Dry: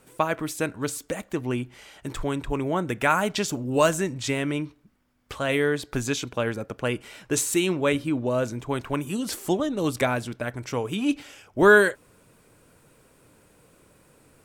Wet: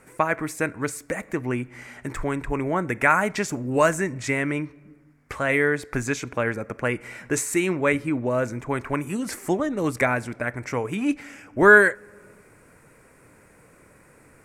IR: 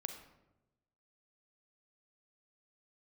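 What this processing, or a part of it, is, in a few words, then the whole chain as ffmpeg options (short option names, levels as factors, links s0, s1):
compressed reverb return: -filter_complex "[0:a]aemphasis=mode=production:type=50fm,asplit=2[s0][s1];[1:a]atrim=start_sample=2205[s2];[s1][s2]afir=irnorm=-1:irlink=0,acompressor=threshold=0.0126:ratio=6,volume=0.631[s3];[s0][s3]amix=inputs=2:normalize=0,lowpass=8300,highshelf=f=2600:t=q:w=3:g=-7.5"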